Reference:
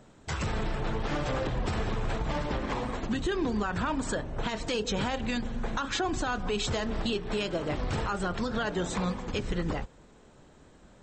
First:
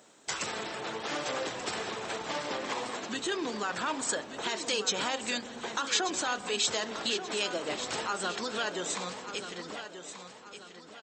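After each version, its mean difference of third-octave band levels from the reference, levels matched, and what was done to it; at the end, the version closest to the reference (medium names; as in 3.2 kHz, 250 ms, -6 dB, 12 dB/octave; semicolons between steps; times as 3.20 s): 6.5 dB: fade out at the end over 2.64 s; high-pass 330 Hz 12 dB/octave; treble shelf 3.4 kHz +12 dB; on a send: feedback delay 1184 ms, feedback 40%, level -10.5 dB; on the sum: trim -2 dB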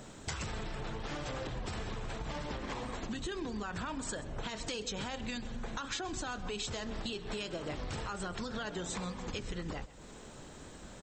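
4.0 dB: treble shelf 3.2 kHz +8.5 dB; compression 5:1, threshold -43 dBFS, peak gain reduction 17 dB; on a send: delay 130 ms -18 dB; on the sum: trim +5 dB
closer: second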